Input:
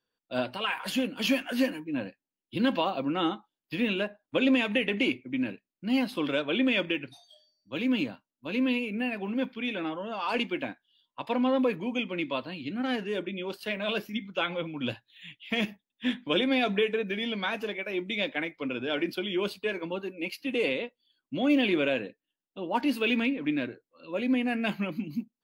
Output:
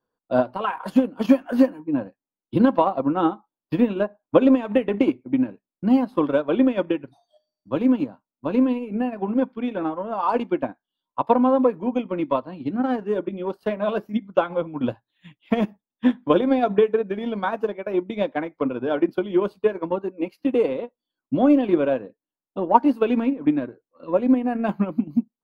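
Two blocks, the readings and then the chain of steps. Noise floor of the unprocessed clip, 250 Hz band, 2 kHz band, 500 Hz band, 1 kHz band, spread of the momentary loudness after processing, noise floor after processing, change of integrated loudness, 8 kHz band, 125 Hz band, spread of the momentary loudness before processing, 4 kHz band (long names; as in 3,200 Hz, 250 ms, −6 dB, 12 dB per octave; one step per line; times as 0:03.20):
below −85 dBFS, +8.0 dB, −4.5 dB, +9.0 dB, +10.0 dB, 10 LU, below −85 dBFS, +7.0 dB, can't be measured, +7.0 dB, 10 LU, −9.5 dB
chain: high shelf with overshoot 1,600 Hz −13.5 dB, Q 1.5
transient designer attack +7 dB, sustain −7 dB
level +5.5 dB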